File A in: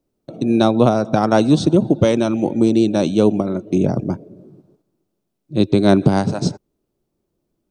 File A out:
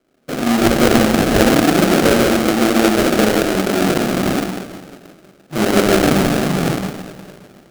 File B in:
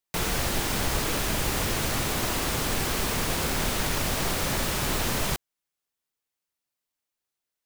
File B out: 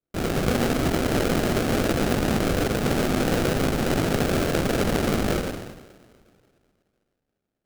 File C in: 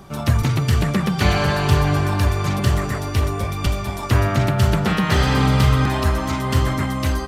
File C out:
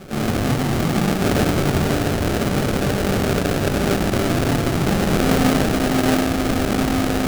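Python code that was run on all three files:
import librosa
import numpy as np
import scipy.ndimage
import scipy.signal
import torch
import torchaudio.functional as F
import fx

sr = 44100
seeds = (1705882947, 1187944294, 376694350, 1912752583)

p1 = fx.bandpass_edges(x, sr, low_hz=210.0, high_hz=3800.0)
p2 = fx.doubler(p1, sr, ms=42.0, db=-12.5)
p3 = p2 + fx.echo_single(p2, sr, ms=147, db=-7.5, dry=0)
p4 = fx.rev_double_slope(p3, sr, seeds[0], early_s=0.96, late_s=2.6, knee_db=-18, drr_db=-7.0)
p5 = fx.over_compress(p4, sr, threshold_db=-21.0, ratio=-0.5)
p6 = p4 + F.gain(torch.from_numpy(p5), -2.5).numpy()
p7 = fx.sample_hold(p6, sr, seeds[1], rate_hz=1000.0, jitter_pct=20)
y = F.gain(torch.from_numpy(p7), -5.5).numpy()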